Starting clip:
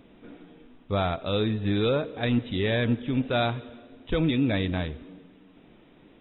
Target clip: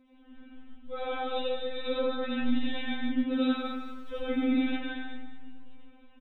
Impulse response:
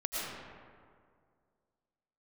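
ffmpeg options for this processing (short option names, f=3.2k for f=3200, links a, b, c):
-filter_complex "[0:a]asplit=2[a][b];[b]adelay=145.8,volume=-8dB,highshelf=f=4k:g=-3.28[c];[a][c]amix=inputs=2:normalize=0,asettb=1/sr,asplit=3[d][e][f];[d]atrim=end=3.314[g];[e]atrim=start=3.31:end=4.42,asetpts=PTS-STARTPTS,afade=t=in:d=0.004:c=qsin,afade=t=out:st=1.106:d=0.004:c=qsin,aeval=exprs='val(0)*gte(abs(val(0)),0.00251)':c=same[h];[f]atrim=start=4.416[i];[g][h]acrossfade=d=0.004:c1=hsin:c2=qsin[j];[j][i]acrossfade=d=0.004:c1=qsin:c2=hsin[k];[1:a]atrim=start_sample=2205,asetrate=66150,aresample=44100[l];[k][l]afir=irnorm=-1:irlink=0,afftfilt=real='re*3.46*eq(mod(b,12),0)':imag='im*3.46*eq(mod(b,12),0)':win_size=2048:overlap=0.75,volume=-4.5dB"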